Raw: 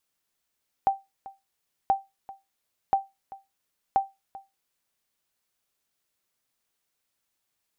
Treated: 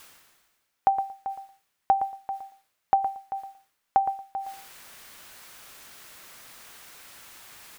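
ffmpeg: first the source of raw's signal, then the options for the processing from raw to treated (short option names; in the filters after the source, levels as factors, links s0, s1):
-f lavfi -i "aevalsrc='0.211*(sin(2*PI*782*mod(t,1.03))*exp(-6.91*mod(t,1.03)/0.21)+0.106*sin(2*PI*782*max(mod(t,1.03)-0.39,0))*exp(-6.91*max(mod(t,1.03)-0.39,0)/0.21))':d=4.12:s=44100"
-filter_complex "[0:a]equalizer=f=1500:t=o:w=2.1:g=6,areverse,acompressor=mode=upward:threshold=0.0631:ratio=2.5,areverse,asplit=2[s0][s1];[s1]adelay=115,lowpass=f=2000:p=1,volume=0.316,asplit=2[s2][s3];[s3]adelay=115,lowpass=f=2000:p=1,volume=0.16[s4];[s0][s2][s4]amix=inputs=3:normalize=0"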